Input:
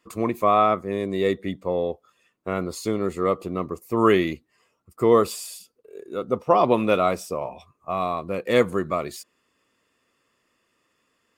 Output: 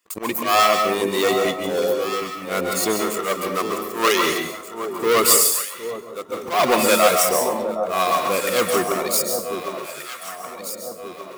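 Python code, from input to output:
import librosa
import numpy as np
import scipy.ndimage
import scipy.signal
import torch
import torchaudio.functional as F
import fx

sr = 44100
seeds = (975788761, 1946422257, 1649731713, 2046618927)

p1 = fx.leveller(x, sr, passes=3)
p2 = np.clip(p1, -10.0 ** (-12.5 / 20.0), 10.0 ** (-12.5 / 20.0))
p3 = p1 + (p2 * librosa.db_to_amplitude(-8.0))
p4 = fx.dereverb_blind(p3, sr, rt60_s=0.78)
p5 = fx.riaa(p4, sr, side='recording')
p6 = fx.auto_swell(p5, sr, attack_ms=123.0)
p7 = fx.low_shelf(p6, sr, hz=300.0, db=-8.0, at=(3.0, 4.26))
p8 = p7 + fx.echo_alternate(p7, sr, ms=765, hz=1000.0, feedback_pct=65, wet_db=-7, dry=0)
p9 = fx.rev_plate(p8, sr, seeds[0], rt60_s=0.61, hf_ratio=0.8, predelay_ms=120, drr_db=3.5)
p10 = fx.upward_expand(p9, sr, threshold_db=-27.0, expansion=1.5, at=(5.41, 6.32))
y = p10 * librosa.db_to_amplitude(-5.0)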